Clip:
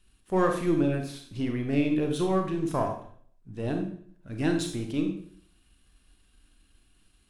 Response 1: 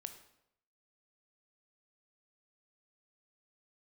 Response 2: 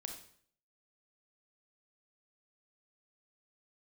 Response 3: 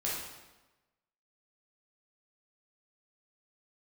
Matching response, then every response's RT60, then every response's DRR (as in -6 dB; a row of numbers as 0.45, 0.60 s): 2; 0.80, 0.55, 1.1 s; 7.5, 3.5, -6.5 dB